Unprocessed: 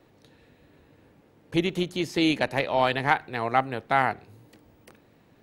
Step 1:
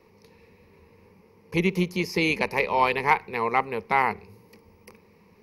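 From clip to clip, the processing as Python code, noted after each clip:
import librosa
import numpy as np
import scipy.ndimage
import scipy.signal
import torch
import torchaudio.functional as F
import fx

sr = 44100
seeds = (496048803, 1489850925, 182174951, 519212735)

y = fx.ripple_eq(x, sr, per_octave=0.84, db=14)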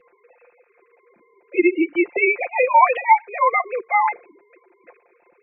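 y = fx.sine_speech(x, sr)
y = y + 0.88 * np.pad(y, (int(5.7 * sr / 1000.0), 0))[:len(y)]
y = y * librosa.db_to_amplitude(3.0)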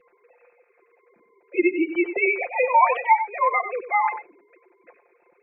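y = x + 10.0 ** (-10.5 / 20.0) * np.pad(x, (int(95 * sr / 1000.0), 0))[:len(x)]
y = y * librosa.db_to_amplitude(-3.5)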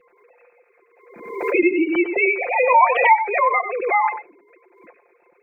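y = fx.pre_swell(x, sr, db_per_s=66.0)
y = y * librosa.db_to_amplitude(2.5)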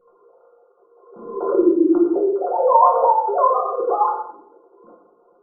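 y = fx.brickwall_lowpass(x, sr, high_hz=1500.0)
y = fx.room_shoebox(y, sr, seeds[0], volume_m3=170.0, walls='mixed', distance_m=1.1)
y = y * librosa.db_to_amplitude(-2.0)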